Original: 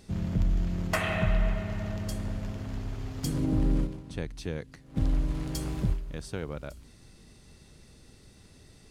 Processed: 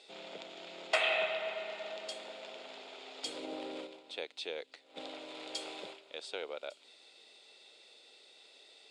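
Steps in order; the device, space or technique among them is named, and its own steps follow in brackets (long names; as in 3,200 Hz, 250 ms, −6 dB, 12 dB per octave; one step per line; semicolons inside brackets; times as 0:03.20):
phone speaker on a table (loudspeaker in its box 480–7,400 Hz, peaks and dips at 1,100 Hz −8 dB, 1,700 Hz −8 dB, 2,500 Hz +4 dB, 3,600 Hz +9 dB, 6,000 Hz −10 dB)
level +1 dB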